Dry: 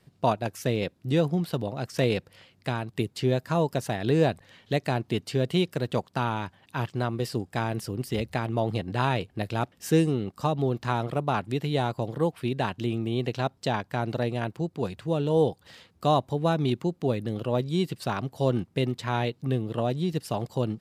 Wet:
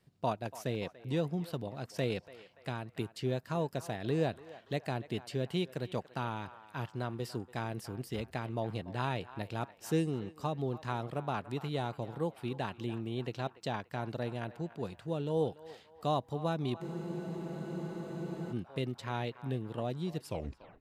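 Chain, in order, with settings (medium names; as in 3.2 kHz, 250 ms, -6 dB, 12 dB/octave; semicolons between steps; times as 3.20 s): tape stop on the ending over 0.55 s; band-passed feedback delay 288 ms, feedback 59%, band-pass 1.2 kHz, level -14 dB; spectral freeze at 16.84 s, 1.67 s; trim -9 dB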